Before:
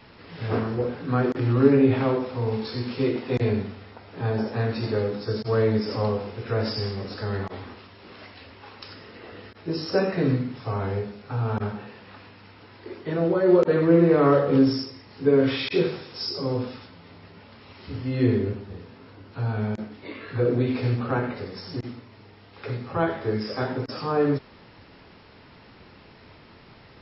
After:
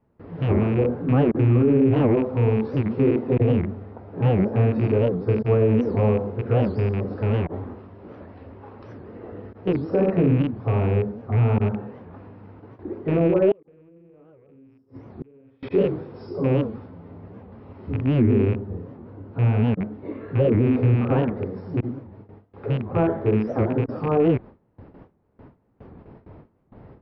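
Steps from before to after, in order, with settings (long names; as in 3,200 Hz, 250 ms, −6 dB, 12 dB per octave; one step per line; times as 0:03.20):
loose part that buzzes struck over −30 dBFS, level −15 dBFS
noise gate with hold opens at −39 dBFS
Bessel low-pass filter 580 Hz, order 2
brickwall limiter −18 dBFS, peak gain reduction 11.5 dB
0:13.52–0:15.63: gate with flip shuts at −27 dBFS, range −34 dB
wow of a warped record 78 rpm, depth 250 cents
level +7.5 dB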